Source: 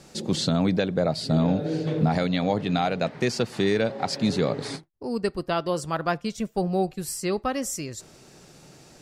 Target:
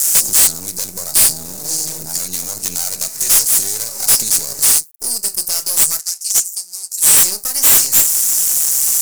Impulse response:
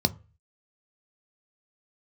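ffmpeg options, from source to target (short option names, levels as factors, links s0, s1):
-filter_complex "[0:a]alimiter=limit=0.112:level=0:latency=1:release=317,acompressor=threshold=0.0282:ratio=6,flanger=delay=6.9:depth=8.3:regen=-63:speed=0.45:shape=sinusoidal,aeval=exprs='max(val(0),0)':c=same,crystalizer=i=8:c=0,asplit=3[s0][s1][s2];[s0]afade=t=out:st=5.98:d=0.02[s3];[s1]bandpass=f=5900:t=q:w=1:csg=0,afade=t=in:st=5.98:d=0.02,afade=t=out:st=7.16:d=0.02[s4];[s2]afade=t=in:st=7.16:d=0.02[s5];[s3][s4][s5]amix=inputs=3:normalize=0,aexciter=amount=14.7:drive=9:freq=5400,asoftclip=type=tanh:threshold=0.188,volume=2.24"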